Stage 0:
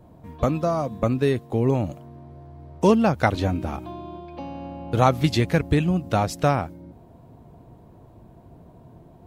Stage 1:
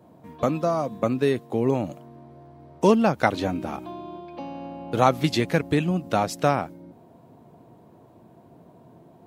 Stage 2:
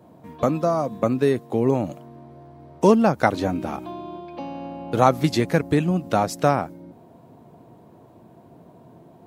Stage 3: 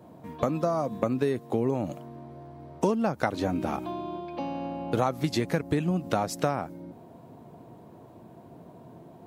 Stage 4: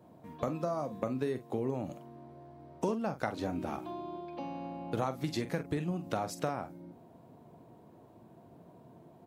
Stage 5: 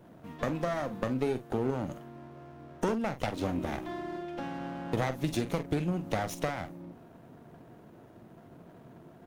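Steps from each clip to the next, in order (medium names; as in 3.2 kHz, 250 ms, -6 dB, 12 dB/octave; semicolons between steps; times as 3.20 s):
high-pass 170 Hz 12 dB/octave
dynamic bell 3 kHz, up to -6 dB, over -43 dBFS, Q 1.3; trim +2.5 dB
compression 4:1, threshold -23 dBFS, peak gain reduction 12 dB
doubling 46 ms -11 dB; trim -7.5 dB
comb filter that takes the minimum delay 0.31 ms; trim +4 dB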